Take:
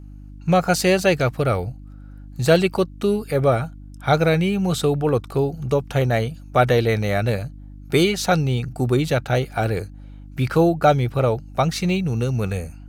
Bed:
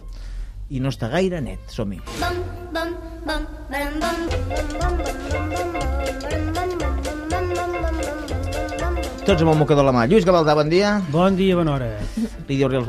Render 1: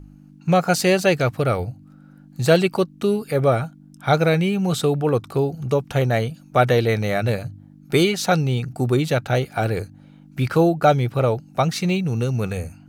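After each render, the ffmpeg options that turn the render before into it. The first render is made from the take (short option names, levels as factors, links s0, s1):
-af "bandreject=f=50:t=h:w=4,bandreject=f=100:t=h:w=4"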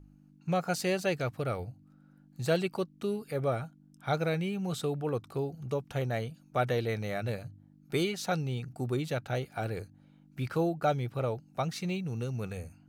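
-af "volume=0.237"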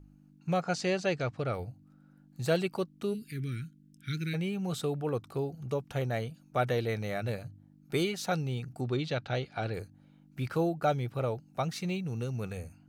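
-filter_complex "[0:a]asplit=3[s0][s1][s2];[s0]afade=t=out:st=0.6:d=0.02[s3];[s1]lowpass=f=7100:w=0.5412,lowpass=f=7100:w=1.3066,afade=t=in:st=0.6:d=0.02,afade=t=out:st=1.52:d=0.02[s4];[s2]afade=t=in:st=1.52:d=0.02[s5];[s3][s4][s5]amix=inputs=3:normalize=0,asplit=3[s6][s7][s8];[s6]afade=t=out:st=3.13:d=0.02[s9];[s7]asuperstop=centerf=750:order=8:qfactor=0.54,afade=t=in:st=3.13:d=0.02,afade=t=out:st=4.33:d=0.02[s10];[s8]afade=t=in:st=4.33:d=0.02[s11];[s9][s10][s11]amix=inputs=3:normalize=0,asettb=1/sr,asplit=3[s12][s13][s14];[s12]atrim=end=8.814[s15];[s13]atrim=start=8.81:end=9.74,asetpts=PTS-STARTPTS,afade=t=in:d=0.004:c=qsin,afade=t=out:st=0.926:d=0.004:c=qsin,lowpass=f=4300:t=q:w=1.7[s16];[s14]atrim=start=9.736[s17];[s15][s16]acrossfade=d=0.004:c1=hsin:c2=qsin[s18];[s18][s17]acrossfade=d=0.004:c1=qsin:c2=hsin"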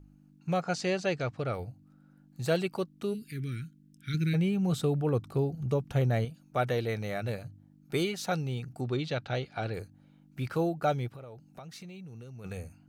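-filter_complex "[0:a]asettb=1/sr,asplit=3[s0][s1][s2];[s0]atrim=end=4.144[s3];[s1]atrim=start=4.14:end=6.25,asetpts=PTS-STARTPTS,afade=t=in:d=0.004:c=qsin,afade=t=out:st=2.106:d=0.004:c=qsin,lowshelf=f=290:g=8.5[s4];[s2]atrim=start=6.246[s5];[s3][s4]acrossfade=d=0.004:c1=hsin:c2=qsin[s6];[s6][s5]acrossfade=d=0.004:c1=qsin:c2=hsin,asplit=3[s7][s8][s9];[s7]afade=t=out:st=11.07:d=0.02[s10];[s8]acompressor=threshold=0.00794:ratio=12:attack=3.2:release=140:knee=1:detection=peak,afade=t=in:st=11.07:d=0.02,afade=t=out:st=12.44:d=0.02[s11];[s9]afade=t=in:st=12.44:d=0.02[s12];[s10][s11][s12]amix=inputs=3:normalize=0"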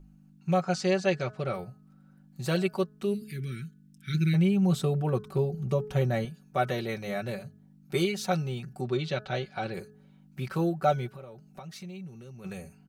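-af "aecho=1:1:5.3:0.71,bandreject=f=212.2:t=h:w=4,bandreject=f=424.4:t=h:w=4,bandreject=f=636.6:t=h:w=4,bandreject=f=848.8:t=h:w=4,bandreject=f=1061:t=h:w=4,bandreject=f=1273.2:t=h:w=4,bandreject=f=1485.4:t=h:w=4,bandreject=f=1697.6:t=h:w=4"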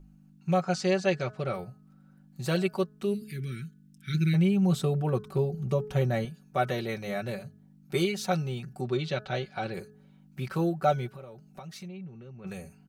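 -filter_complex "[0:a]asplit=3[s0][s1][s2];[s0]afade=t=out:st=11.87:d=0.02[s3];[s1]lowpass=2700,afade=t=in:st=11.87:d=0.02,afade=t=out:st=12.46:d=0.02[s4];[s2]afade=t=in:st=12.46:d=0.02[s5];[s3][s4][s5]amix=inputs=3:normalize=0"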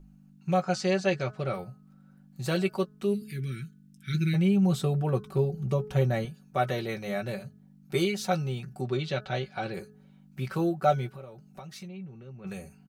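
-filter_complex "[0:a]asplit=2[s0][s1];[s1]adelay=15,volume=0.251[s2];[s0][s2]amix=inputs=2:normalize=0"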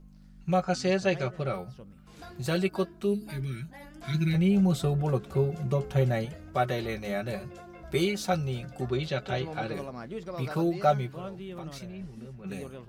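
-filter_complex "[1:a]volume=0.0668[s0];[0:a][s0]amix=inputs=2:normalize=0"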